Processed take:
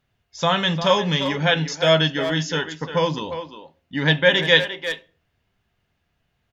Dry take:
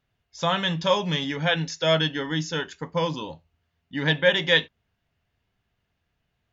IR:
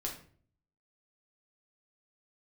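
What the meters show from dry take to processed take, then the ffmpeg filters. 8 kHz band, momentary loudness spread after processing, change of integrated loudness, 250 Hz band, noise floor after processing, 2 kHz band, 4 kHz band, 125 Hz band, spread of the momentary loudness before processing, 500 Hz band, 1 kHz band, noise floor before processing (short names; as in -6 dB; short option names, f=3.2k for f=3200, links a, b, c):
n/a, 13 LU, +4.0 dB, +4.0 dB, -73 dBFS, +4.5 dB, +4.5 dB, +4.5 dB, 10 LU, +4.5 dB, +4.5 dB, -78 dBFS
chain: -filter_complex "[0:a]asplit=2[a][b];[b]adelay=350,highpass=300,lowpass=3.4k,asoftclip=type=hard:threshold=-14.5dB,volume=-9dB[c];[a][c]amix=inputs=2:normalize=0,asplit=2[d][e];[1:a]atrim=start_sample=2205,asetrate=52920,aresample=44100[f];[e][f]afir=irnorm=-1:irlink=0,volume=-12.5dB[g];[d][g]amix=inputs=2:normalize=0,volume=3dB"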